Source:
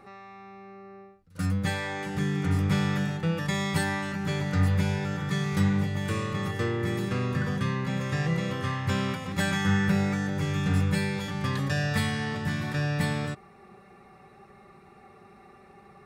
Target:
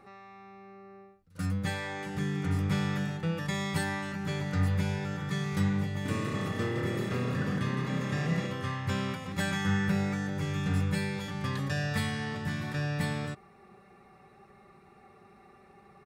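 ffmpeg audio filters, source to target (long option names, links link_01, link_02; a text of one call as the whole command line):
ffmpeg -i in.wav -filter_complex "[0:a]asplit=3[link_01][link_02][link_03];[link_01]afade=type=out:start_time=6.04:duration=0.02[link_04];[link_02]asplit=8[link_05][link_06][link_07][link_08][link_09][link_10][link_11][link_12];[link_06]adelay=163,afreqshift=35,volume=-6dB[link_13];[link_07]adelay=326,afreqshift=70,volume=-11.2dB[link_14];[link_08]adelay=489,afreqshift=105,volume=-16.4dB[link_15];[link_09]adelay=652,afreqshift=140,volume=-21.6dB[link_16];[link_10]adelay=815,afreqshift=175,volume=-26.8dB[link_17];[link_11]adelay=978,afreqshift=210,volume=-32dB[link_18];[link_12]adelay=1141,afreqshift=245,volume=-37.2dB[link_19];[link_05][link_13][link_14][link_15][link_16][link_17][link_18][link_19]amix=inputs=8:normalize=0,afade=type=in:start_time=6.04:duration=0.02,afade=type=out:start_time=8.46:duration=0.02[link_20];[link_03]afade=type=in:start_time=8.46:duration=0.02[link_21];[link_04][link_20][link_21]amix=inputs=3:normalize=0,volume=-4dB" out.wav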